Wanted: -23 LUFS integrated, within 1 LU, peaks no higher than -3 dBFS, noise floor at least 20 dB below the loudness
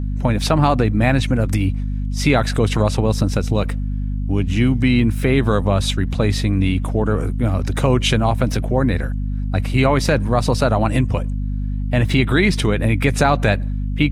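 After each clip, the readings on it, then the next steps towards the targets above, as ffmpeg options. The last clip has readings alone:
hum 50 Hz; highest harmonic 250 Hz; hum level -19 dBFS; loudness -18.5 LUFS; peak level -2.5 dBFS; loudness target -23.0 LUFS
-> -af "bandreject=f=50:t=h:w=6,bandreject=f=100:t=h:w=6,bandreject=f=150:t=h:w=6,bandreject=f=200:t=h:w=6,bandreject=f=250:t=h:w=6"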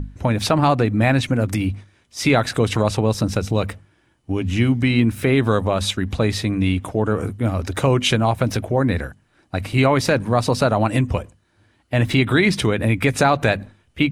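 hum not found; loudness -19.5 LUFS; peak level -3.0 dBFS; loudness target -23.0 LUFS
-> -af "volume=0.668"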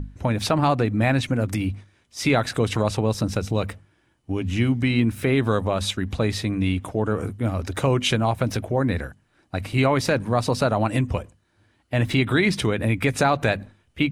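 loudness -23.0 LUFS; peak level -6.5 dBFS; noise floor -65 dBFS

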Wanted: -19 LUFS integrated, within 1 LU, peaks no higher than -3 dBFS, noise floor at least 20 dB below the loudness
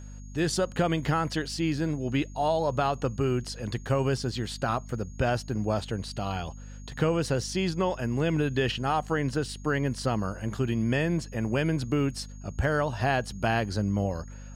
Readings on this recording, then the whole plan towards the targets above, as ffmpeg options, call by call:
hum 50 Hz; highest harmonic 250 Hz; hum level -40 dBFS; steady tone 6.6 kHz; tone level -55 dBFS; loudness -28.5 LUFS; peak level -13.0 dBFS; loudness target -19.0 LUFS
-> -af "bandreject=f=50:t=h:w=4,bandreject=f=100:t=h:w=4,bandreject=f=150:t=h:w=4,bandreject=f=200:t=h:w=4,bandreject=f=250:t=h:w=4"
-af "bandreject=f=6600:w=30"
-af "volume=2.99"

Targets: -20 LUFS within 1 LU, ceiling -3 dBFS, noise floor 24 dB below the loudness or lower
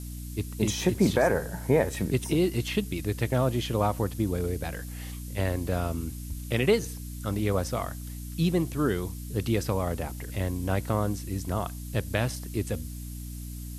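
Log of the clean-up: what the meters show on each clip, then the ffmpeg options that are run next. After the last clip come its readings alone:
hum 60 Hz; highest harmonic 300 Hz; hum level -35 dBFS; noise floor -38 dBFS; noise floor target -53 dBFS; loudness -29.0 LUFS; peak level -9.5 dBFS; loudness target -20.0 LUFS
-> -af "bandreject=f=60:t=h:w=6,bandreject=f=120:t=h:w=6,bandreject=f=180:t=h:w=6,bandreject=f=240:t=h:w=6,bandreject=f=300:t=h:w=6"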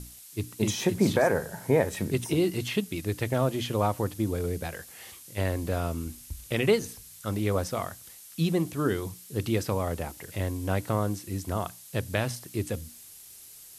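hum not found; noise floor -49 dBFS; noise floor target -54 dBFS
-> -af "afftdn=nr=6:nf=-49"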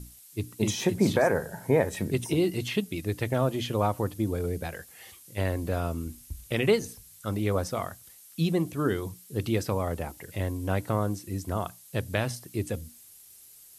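noise floor -52 dBFS; noise floor target -54 dBFS
-> -af "afftdn=nr=6:nf=-52"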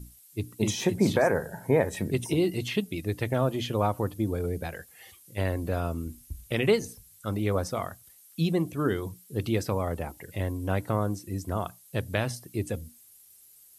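noise floor -56 dBFS; loudness -29.5 LUFS; peak level -10.0 dBFS; loudness target -20.0 LUFS
-> -af "volume=2.99,alimiter=limit=0.708:level=0:latency=1"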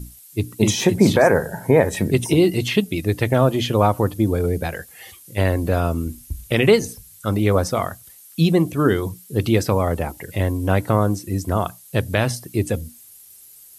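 loudness -20.0 LUFS; peak level -3.0 dBFS; noise floor -46 dBFS

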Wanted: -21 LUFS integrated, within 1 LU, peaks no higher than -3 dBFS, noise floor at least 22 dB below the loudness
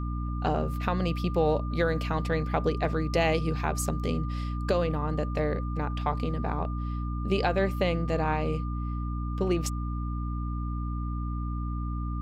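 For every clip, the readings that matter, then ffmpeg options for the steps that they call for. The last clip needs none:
hum 60 Hz; highest harmonic 300 Hz; hum level -29 dBFS; steady tone 1.2 kHz; tone level -41 dBFS; loudness -29.5 LUFS; peak level -12.5 dBFS; loudness target -21.0 LUFS
-> -af "bandreject=f=60:t=h:w=6,bandreject=f=120:t=h:w=6,bandreject=f=180:t=h:w=6,bandreject=f=240:t=h:w=6,bandreject=f=300:t=h:w=6"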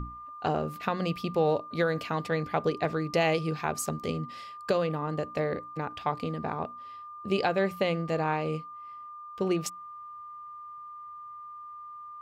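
hum not found; steady tone 1.2 kHz; tone level -41 dBFS
-> -af "bandreject=f=1200:w=30"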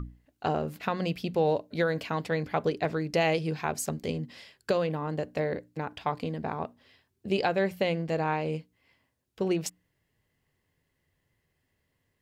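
steady tone not found; loudness -30.5 LUFS; peak level -14.5 dBFS; loudness target -21.0 LUFS
-> -af "volume=2.99"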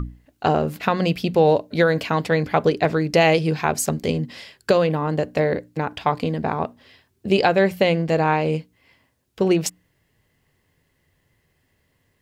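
loudness -21.0 LUFS; peak level -5.0 dBFS; noise floor -68 dBFS

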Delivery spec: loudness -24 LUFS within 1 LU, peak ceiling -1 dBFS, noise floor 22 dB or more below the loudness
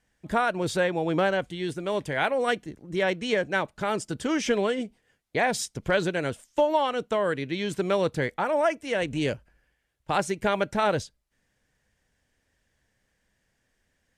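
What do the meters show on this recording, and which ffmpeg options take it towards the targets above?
loudness -27.0 LUFS; peak level -12.0 dBFS; loudness target -24.0 LUFS
-> -af "volume=1.41"

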